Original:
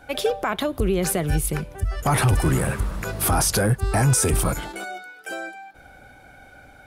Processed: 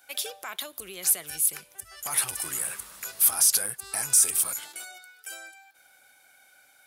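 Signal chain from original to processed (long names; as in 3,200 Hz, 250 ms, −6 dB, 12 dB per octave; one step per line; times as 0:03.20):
first difference
in parallel at −8 dB: soft clipping −21.5 dBFS, distortion −10 dB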